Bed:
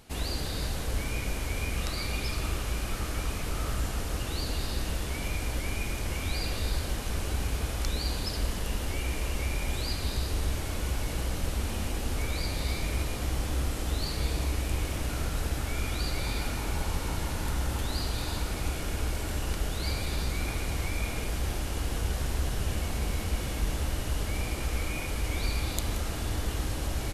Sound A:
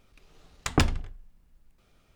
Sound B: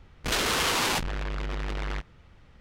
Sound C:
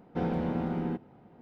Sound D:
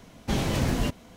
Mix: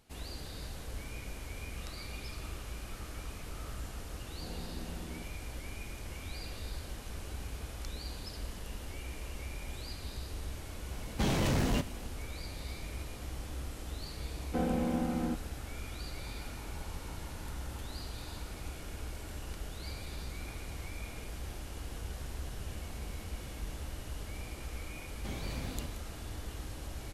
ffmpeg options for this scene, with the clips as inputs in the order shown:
-filter_complex "[3:a]asplit=2[a][b];[4:a]asplit=2[c][d];[0:a]volume=-11dB[e];[a]acompressor=threshold=-32dB:ratio=6:attack=3.2:release=140:knee=1:detection=peak[f];[c]asoftclip=type=tanh:threshold=-22.5dB[g];[b]aecho=1:1:3.9:0.88[h];[f]atrim=end=1.41,asetpts=PTS-STARTPTS,volume=-11dB,afade=t=in:d=0.004:c=hsin,afade=t=out:st=1.406:d=0.004:c=hsin,adelay=4260[i];[g]atrim=end=1.16,asetpts=PTS-STARTPTS,volume=-1dB,afade=t=in:d=0.004:c=hsin,afade=t=out:st=1.156:d=0.004:c=hsin,adelay=10910[j];[h]atrim=end=1.41,asetpts=PTS-STARTPTS,volume=-4.5dB,afade=t=in:d=0.004:c=hsin,afade=t=out:st=1.406:d=0.004:c=hsin,adelay=14380[k];[d]atrim=end=1.16,asetpts=PTS-STARTPTS,volume=-16.5dB,afade=t=in:d=0.004:c=hsin,afade=t=out:st=1.156:d=0.004:c=hsin,adelay=24960[l];[e][i][j][k][l]amix=inputs=5:normalize=0"

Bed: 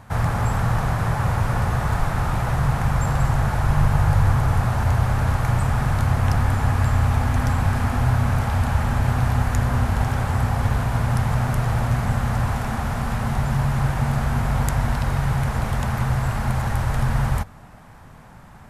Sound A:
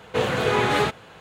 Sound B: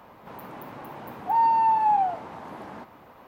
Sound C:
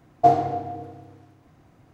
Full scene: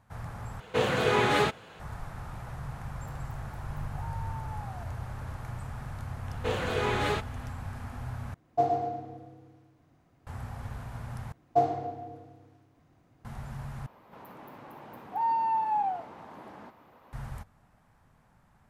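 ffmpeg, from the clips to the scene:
-filter_complex "[1:a]asplit=2[a][b];[2:a]asplit=2[c][d];[3:a]asplit=2[e][f];[0:a]volume=-18.5dB[g];[c]acompressor=threshold=-27dB:ratio=6:attack=3.2:release=140:knee=1:detection=peak[h];[e]aecho=1:1:113|226|339|452:0.473|0.18|0.0683|0.026[i];[d]aresample=32000,aresample=44100[j];[g]asplit=5[k][l][m][n][o];[k]atrim=end=0.604[p];[a]atrim=end=1.2,asetpts=PTS-STARTPTS,volume=-3.5dB[q];[l]atrim=start=1.796:end=8.344[r];[i]atrim=end=1.93,asetpts=PTS-STARTPTS,volume=-10dB[s];[m]atrim=start=10.266:end=11.324[t];[f]atrim=end=1.93,asetpts=PTS-STARTPTS,volume=-8dB[u];[n]atrim=start=13.246:end=13.864[v];[j]atrim=end=3.27,asetpts=PTS-STARTPTS,volume=-7dB[w];[o]atrim=start=17.126[x];[h]atrim=end=3.27,asetpts=PTS-STARTPTS,volume=-15.5dB,afade=t=in:d=0.004:c=hsin,afade=t=out:st=3.266:d=0.004:c=hsin,adelay=2690[y];[b]atrim=end=1.2,asetpts=PTS-STARTPTS,volume=-8dB,afade=t=in:d=0.004:c=hsin,afade=t=out:st=1.196:d=0.004:c=hsin,adelay=6300[z];[p][q]acrossfade=d=0.004:c1=hsin:c2=hsin[aa];[aa][r]acrossfade=d=0.004:c1=hsin:c2=hsin[ab];[ab][s]acrossfade=d=0.004:c1=hsin:c2=hsin[ac];[ac][t]acrossfade=d=0.004:c1=hsin:c2=hsin[ad];[ad][u]acrossfade=d=0.004:c1=hsin:c2=hsin[ae];[ae][v]acrossfade=d=0.004:c1=hsin:c2=hsin[af];[af][w]acrossfade=d=0.004:c1=hsin:c2=hsin[ag];[ag][x]acrossfade=d=0.004:c1=hsin:c2=hsin[ah];[ah][y][z]amix=inputs=3:normalize=0"

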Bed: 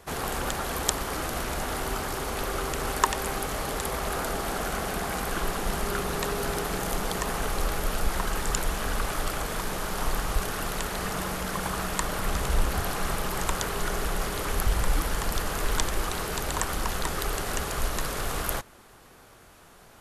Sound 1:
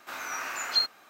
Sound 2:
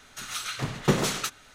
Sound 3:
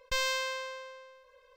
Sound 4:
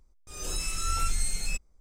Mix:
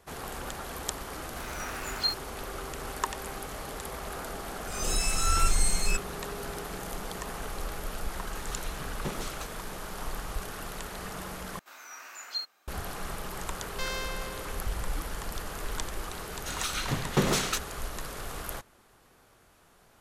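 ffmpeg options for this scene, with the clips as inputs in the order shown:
-filter_complex "[1:a]asplit=2[a][b];[2:a]asplit=2[c][d];[0:a]volume=-8dB[e];[a]aeval=exprs='sgn(val(0))*max(abs(val(0))-0.00596,0)':c=same[f];[4:a]acontrast=39[g];[b]bass=f=250:g=-7,treble=f=4k:g=5[h];[d]alimiter=limit=-12.5dB:level=0:latency=1:release=71[i];[e]asplit=2[j][k];[j]atrim=end=11.594[l];[h]atrim=end=1.09,asetpts=PTS-STARTPTS,volume=-12dB[m];[k]atrim=start=12.676[n];[f]atrim=end=1.09,asetpts=PTS-STARTPTS,volume=-3dB,afade=t=in:d=0.004:c=hsin,afade=t=out:st=1.086:d=0.004:c=hsin,adelay=1280[o];[g]atrim=end=1.8,asetpts=PTS-STARTPTS,volume=-2dB,afade=t=in:d=0.004:c=hsin,afade=t=out:st=1.796:d=0.004:c=hsin,adelay=4400[p];[c]atrim=end=1.54,asetpts=PTS-STARTPTS,volume=-13.5dB,afade=t=in:d=0.004:c=hsin,afade=t=out:st=1.536:d=0.004:c=hsin,adelay=8170[q];[3:a]atrim=end=1.56,asetpts=PTS-STARTPTS,volume=-5dB,afade=t=in:d=0.004:c=hsin,afade=t=out:st=1.556:d=0.004:c=hsin,adelay=13670[r];[i]atrim=end=1.54,asetpts=PTS-STARTPTS,afade=t=in:d=0.004:c=hsin,afade=t=out:st=1.536:d=0.004:c=hsin,adelay=16290[s];[l][m]acrossfade=d=0.004:c1=hsin:c2=hsin[t];[t][n]acrossfade=d=0.004:c1=hsin:c2=hsin[u];[u][o][p][q][r][s]amix=inputs=6:normalize=0"

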